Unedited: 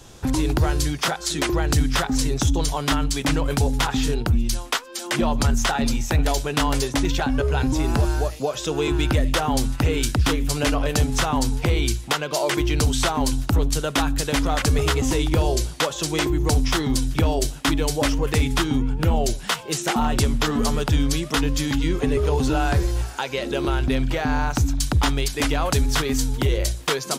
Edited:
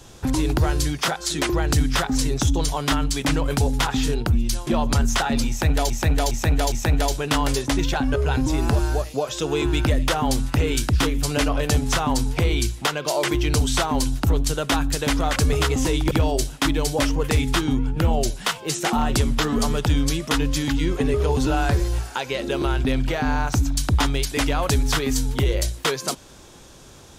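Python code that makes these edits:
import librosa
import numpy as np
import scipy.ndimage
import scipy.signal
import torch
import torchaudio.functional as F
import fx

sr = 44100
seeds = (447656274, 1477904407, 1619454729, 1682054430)

y = fx.edit(x, sr, fx.cut(start_s=4.67, length_s=0.49),
    fx.repeat(start_s=5.98, length_s=0.41, count=4),
    fx.cut(start_s=15.37, length_s=1.77), tone=tone)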